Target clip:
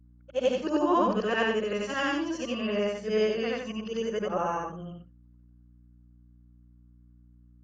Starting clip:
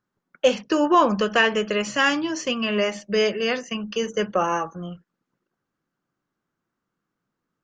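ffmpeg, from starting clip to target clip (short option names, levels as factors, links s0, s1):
-af "afftfilt=real='re':imag='-im':win_size=8192:overlap=0.75,tiltshelf=f=1200:g=3.5,aeval=exprs='val(0)+0.00282*(sin(2*PI*60*n/s)+sin(2*PI*2*60*n/s)/2+sin(2*PI*3*60*n/s)/3+sin(2*PI*4*60*n/s)/4+sin(2*PI*5*60*n/s)/5)':c=same,volume=0.668"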